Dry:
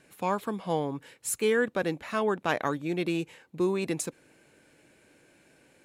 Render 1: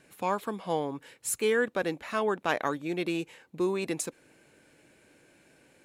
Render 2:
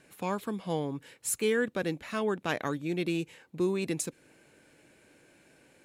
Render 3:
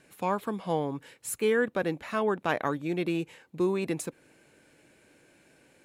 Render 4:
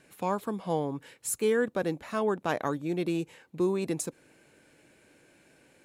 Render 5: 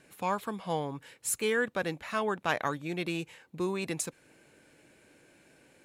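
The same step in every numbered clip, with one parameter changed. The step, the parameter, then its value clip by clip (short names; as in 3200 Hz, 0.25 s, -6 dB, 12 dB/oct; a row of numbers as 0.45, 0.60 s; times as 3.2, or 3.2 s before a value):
dynamic EQ, frequency: 120, 890, 6200, 2400, 320 Hz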